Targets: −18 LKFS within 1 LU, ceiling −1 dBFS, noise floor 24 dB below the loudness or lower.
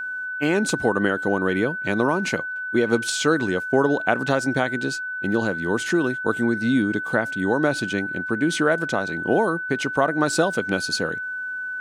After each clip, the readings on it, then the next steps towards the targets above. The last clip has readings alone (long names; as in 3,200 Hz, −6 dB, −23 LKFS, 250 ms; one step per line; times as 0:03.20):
interfering tone 1,500 Hz; level of the tone −27 dBFS; integrated loudness −22.5 LKFS; sample peak −2.5 dBFS; target loudness −18.0 LKFS
→ notch filter 1,500 Hz, Q 30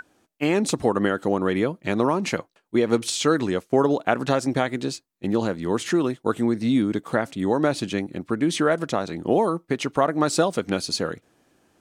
interfering tone none found; integrated loudness −23.5 LKFS; sample peak −3.0 dBFS; target loudness −18.0 LKFS
→ level +5.5 dB
brickwall limiter −1 dBFS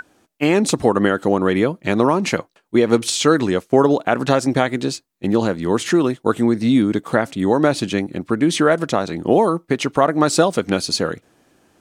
integrated loudness −18.0 LKFS; sample peak −1.0 dBFS; background noise floor −63 dBFS